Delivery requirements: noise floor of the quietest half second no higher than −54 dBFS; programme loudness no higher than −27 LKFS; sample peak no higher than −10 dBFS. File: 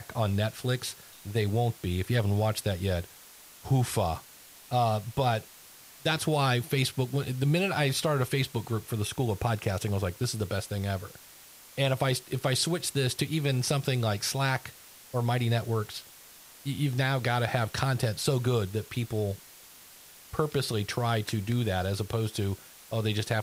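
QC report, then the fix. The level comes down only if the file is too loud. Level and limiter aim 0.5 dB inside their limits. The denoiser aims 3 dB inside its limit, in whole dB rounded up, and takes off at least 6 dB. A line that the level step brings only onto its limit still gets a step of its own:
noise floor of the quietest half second −52 dBFS: out of spec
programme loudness −29.5 LKFS: in spec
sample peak −12.5 dBFS: in spec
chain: broadband denoise 6 dB, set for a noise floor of −52 dBFS

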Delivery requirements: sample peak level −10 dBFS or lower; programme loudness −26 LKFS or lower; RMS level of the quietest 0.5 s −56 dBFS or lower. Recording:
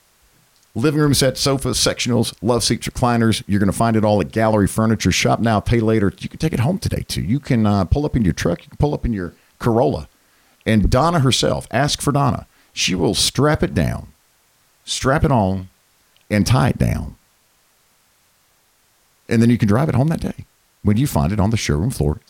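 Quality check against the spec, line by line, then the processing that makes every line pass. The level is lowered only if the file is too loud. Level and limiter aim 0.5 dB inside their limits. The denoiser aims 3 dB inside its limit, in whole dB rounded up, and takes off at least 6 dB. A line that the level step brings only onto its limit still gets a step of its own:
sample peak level −3.5 dBFS: out of spec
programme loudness −18.0 LKFS: out of spec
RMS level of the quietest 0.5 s −59 dBFS: in spec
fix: level −8.5 dB

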